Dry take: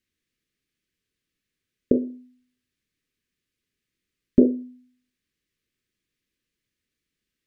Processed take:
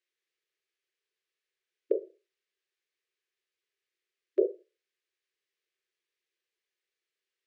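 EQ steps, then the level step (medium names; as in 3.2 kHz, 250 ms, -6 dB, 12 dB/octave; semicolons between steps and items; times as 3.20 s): brick-wall FIR high-pass 340 Hz; distance through air 51 m; -3.5 dB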